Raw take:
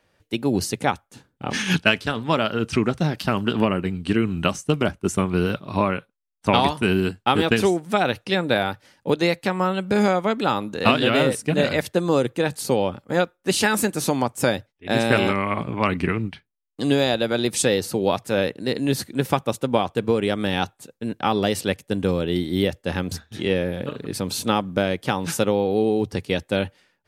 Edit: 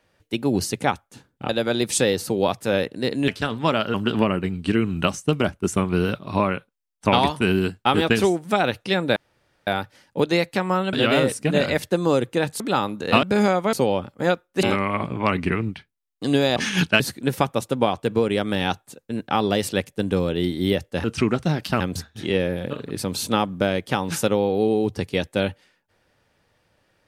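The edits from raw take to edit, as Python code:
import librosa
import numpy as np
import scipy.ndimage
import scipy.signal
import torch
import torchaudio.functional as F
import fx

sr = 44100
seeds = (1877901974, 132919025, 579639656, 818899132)

y = fx.edit(x, sr, fx.swap(start_s=1.49, length_s=0.44, other_s=17.13, other_length_s=1.79),
    fx.move(start_s=2.59, length_s=0.76, to_s=22.96),
    fx.insert_room_tone(at_s=8.57, length_s=0.51),
    fx.swap(start_s=9.83, length_s=0.5, other_s=10.96, other_length_s=1.67),
    fx.cut(start_s=13.53, length_s=1.67), tone=tone)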